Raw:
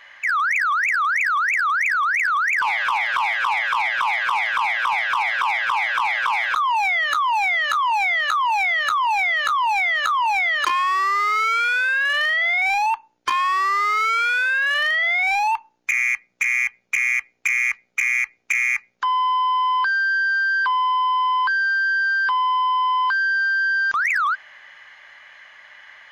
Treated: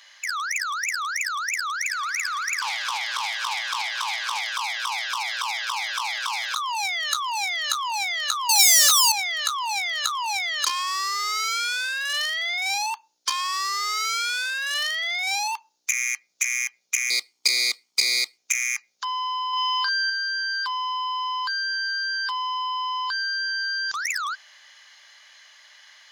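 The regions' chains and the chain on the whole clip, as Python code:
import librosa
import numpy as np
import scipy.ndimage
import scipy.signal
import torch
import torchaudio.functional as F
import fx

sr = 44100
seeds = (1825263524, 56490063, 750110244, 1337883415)

y = fx.chain(x, sr, fx.echo_heads(ms=76, heads='first and third', feedback_pct=63, wet_db=-19.5),
    fx.doppler_dist(depth_ms=0.18), at=(1.75, 4.41))
y = fx.chain(y, sr, fx.zero_step(step_db=-42.5),
    fx.leveller(passes=5), at=(8.49, 9.12))
y = fx.chain(y, sr, fx.lower_of_two(delay_ms=0.91),
    fx.highpass(hz=130.0, slope=12),
    fx.peak_eq(hz=330.0, db=5.0, octaves=1.3), at=(17.1, 18.38))
y = fx.chain(y, sr, fx.highpass(hz=390.0, slope=6),
    fx.doubler(ms=40.0, db=-7),
    fx.env_flatten(amount_pct=100), at=(19.53, 20.1))
y = fx.highpass(y, sr, hz=730.0, slope=6)
y = fx.high_shelf_res(y, sr, hz=3200.0, db=14.0, q=1.5)
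y = y * 10.0 ** (-5.5 / 20.0)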